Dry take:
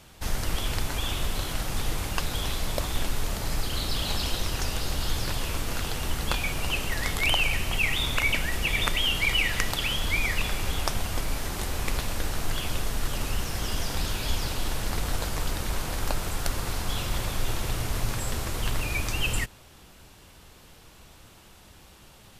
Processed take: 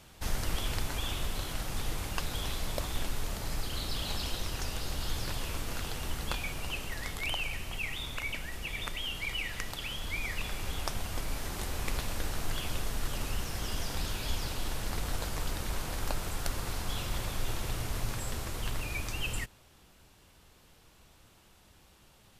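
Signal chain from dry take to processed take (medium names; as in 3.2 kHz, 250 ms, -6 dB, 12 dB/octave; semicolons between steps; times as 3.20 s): gain riding 2 s; trim -7.5 dB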